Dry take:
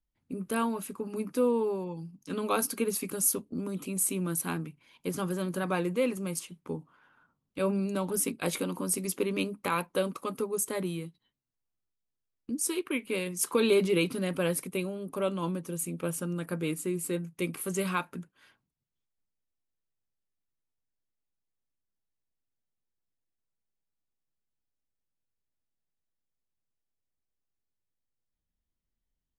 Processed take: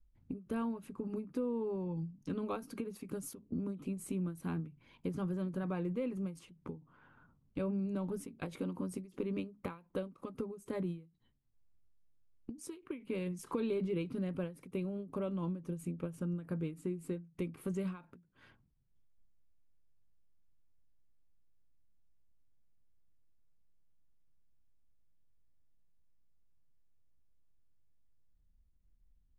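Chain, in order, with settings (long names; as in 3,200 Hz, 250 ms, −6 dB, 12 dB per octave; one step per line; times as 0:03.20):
RIAA equalisation playback
downward compressor 3 to 1, threshold −38 dBFS, peak gain reduction 16 dB
every ending faded ahead of time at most 160 dB per second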